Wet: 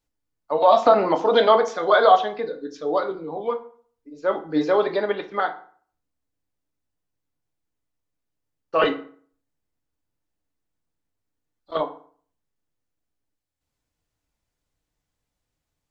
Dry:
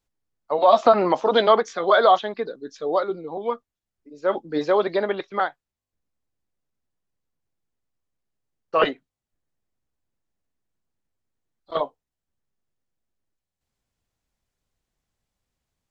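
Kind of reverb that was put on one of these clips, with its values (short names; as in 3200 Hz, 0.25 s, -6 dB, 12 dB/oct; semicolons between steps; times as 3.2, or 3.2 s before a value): FDN reverb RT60 0.49 s, low-frequency decay 1.05×, high-frequency decay 0.7×, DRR 5 dB; gain -1 dB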